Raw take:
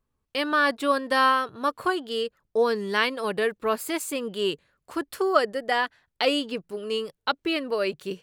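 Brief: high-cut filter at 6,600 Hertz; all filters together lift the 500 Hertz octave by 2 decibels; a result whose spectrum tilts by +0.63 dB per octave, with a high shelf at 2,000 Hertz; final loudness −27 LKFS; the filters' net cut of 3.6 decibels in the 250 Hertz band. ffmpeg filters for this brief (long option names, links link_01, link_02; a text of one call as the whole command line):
ffmpeg -i in.wav -af "lowpass=6600,equalizer=frequency=250:width_type=o:gain=-7,equalizer=frequency=500:width_type=o:gain=4,highshelf=frequency=2000:gain=3.5,volume=-2.5dB" out.wav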